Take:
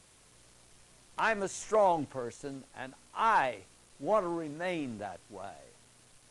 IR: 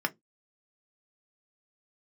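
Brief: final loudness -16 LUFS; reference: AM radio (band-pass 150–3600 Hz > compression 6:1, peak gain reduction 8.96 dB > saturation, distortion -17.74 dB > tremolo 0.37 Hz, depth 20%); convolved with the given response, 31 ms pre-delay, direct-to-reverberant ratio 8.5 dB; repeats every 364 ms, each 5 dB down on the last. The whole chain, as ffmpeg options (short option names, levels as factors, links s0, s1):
-filter_complex "[0:a]aecho=1:1:364|728|1092|1456|1820|2184|2548:0.562|0.315|0.176|0.0988|0.0553|0.031|0.0173,asplit=2[s0][s1];[1:a]atrim=start_sample=2205,adelay=31[s2];[s1][s2]afir=irnorm=-1:irlink=0,volume=0.158[s3];[s0][s3]amix=inputs=2:normalize=0,highpass=150,lowpass=3600,acompressor=threshold=0.0355:ratio=6,asoftclip=threshold=0.0473,tremolo=f=0.37:d=0.2,volume=11.9"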